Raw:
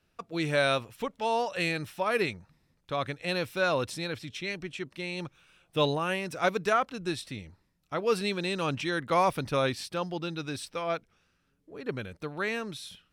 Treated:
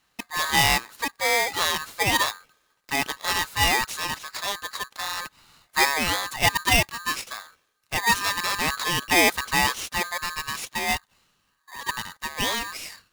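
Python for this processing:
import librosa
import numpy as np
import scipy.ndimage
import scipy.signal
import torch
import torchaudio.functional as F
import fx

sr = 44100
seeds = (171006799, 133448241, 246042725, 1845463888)

y = scipy.signal.sosfilt(scipy.signal.butter(2, 110.0, 'highpass', fs=sr, output='sos'), x)
y = fx.low_shelf(y, sr, hz=240.0, db=-7.5)
y = y * np.sign(np.sin(2.0 * np.pi * 1400.0 * np.arange(len(y)) / sr))
y = F.gain(torch.from_numpy(y), 6.5).numpy()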